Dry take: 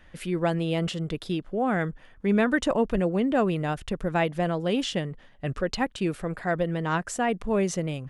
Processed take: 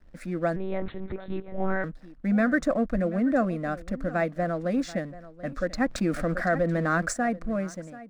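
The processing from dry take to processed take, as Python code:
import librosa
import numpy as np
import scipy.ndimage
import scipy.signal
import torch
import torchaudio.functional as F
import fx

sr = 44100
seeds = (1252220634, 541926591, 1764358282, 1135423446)

p1 = fx.fade_out_tail(x, sr, length_s=0.69)
p2 = 10.0 ** (-25.0 / 20.0) * np.tanh(p1 / 10.0 ** (-25.0 / 20.0))
p3 = p1 + (p2 * librosa.db_to_amplitude(-10.0))
p4 = fx.air_absorb(p3, sr, metres=55.0)
p5 = fx.fixed_phaser(p4, sr, hz=610.0, stages=8)
p6 = fx.backlash(p5, sr, play_db=-48.5)
p7 = p6 + fx.echo_single(p6, sr, ms=734, db=-17.5, dry=0)
p8 = fx.lpc_monotone(p7, sr, seeds[0], pitch_hz=190.0, order=8, at=(0.56, 1.84))
y = fx.env_flatten(p8, sr, amount_pct=50, at=(5.79, 7.12), fade=0.02)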